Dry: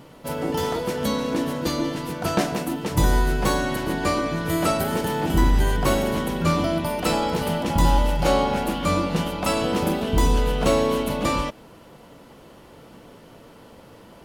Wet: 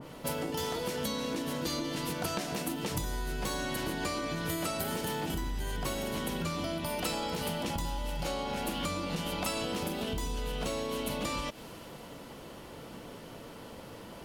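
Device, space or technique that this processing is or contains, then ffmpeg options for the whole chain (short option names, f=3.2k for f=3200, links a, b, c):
serial compression, peaks first: -af "acompressor=threshold=-26dB:ratio=6,acompressor=threshold=-34dB:ratio=2.5,adynamicequalizer=threshold=0.002:dfrequency=2100:dqfactor=0.7:tfrequency=2100:tqfactor=0.7:attack=5:release=100:ratio=0.375:range=3.5:mode=boostabove:tftype=highshelf"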